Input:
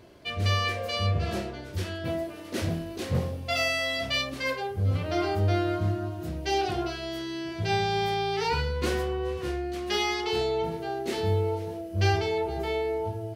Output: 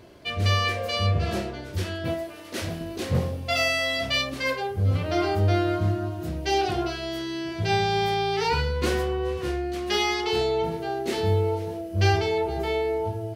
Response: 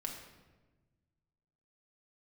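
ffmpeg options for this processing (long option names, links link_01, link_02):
-filter_complex "[0:a]asettb=1/sr,asplit=3[link_01][link_02][link_03];[link_01]atrim=end=2.144[link_04];[link_02]atrim=start=2.14:end=2.81,asetpts=PTS-STARTPTS,afade=type=in:duration=0.004:curve=qsin,afade=type=out:start_time=0.666:duration=0.004:curve=qsin,equalizer=frequency=160:width=0.32:gain=-7[link_05];[link_03]atrim=start=2.806[link_06];[link_04][link_05]acrossfade=duration=0.004:curve1=hsin:curve2=qsin[link_07];[link_07][link_06]acrossfade=duration=0.004:curve1=qsin:curve2=hsin,volume=3dB"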